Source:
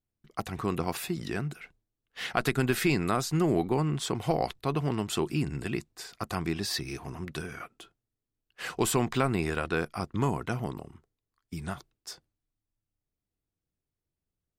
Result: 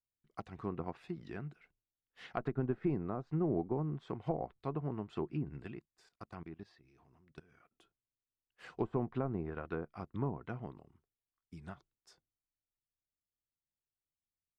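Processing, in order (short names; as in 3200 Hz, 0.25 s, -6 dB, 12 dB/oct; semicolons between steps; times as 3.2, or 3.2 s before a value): treble ducked by the level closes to 860 Hz, closed at -23.5 dBFS; high shelf 2600 Hz -6.5 dB; 5.71–7.73 level quantiser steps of 17 dB; upward expander 1.5:1, over -42 dBFS; gain -6 dB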